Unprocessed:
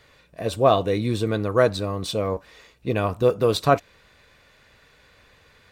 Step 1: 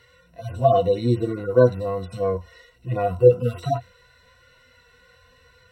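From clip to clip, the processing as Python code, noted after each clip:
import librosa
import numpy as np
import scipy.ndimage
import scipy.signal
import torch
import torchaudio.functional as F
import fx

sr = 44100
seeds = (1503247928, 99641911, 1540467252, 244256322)

y = fx.hpss_only(x, sr, part='harmonic')
y = fx.ripple_eq(y, sr, per_octave=2.0, db=16)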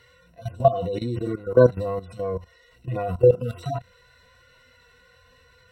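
y = fx.level_steps(x, sr, step_db=15)
y = y * librosa.db_to_amplitude(3.5)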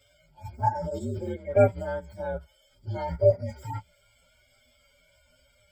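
y = fx.partial_stretch(x, sr, pct=124)
y = y * librosa.db_to_amplitude(-3.0)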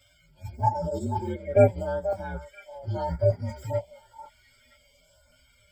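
y = fx.echo_stepped(x, sr, ms=485, hz=840.0, octaves=1.4, feedback_pct=70, wet_db=-8.0)
y = fx.filter_lfo_notch(y, sr, shape='saw_up', hz=0.94, low_hz=410.0, high_hz=3000.0, q=1.4)
y = y * librosa.db_to_amplitude(2.5)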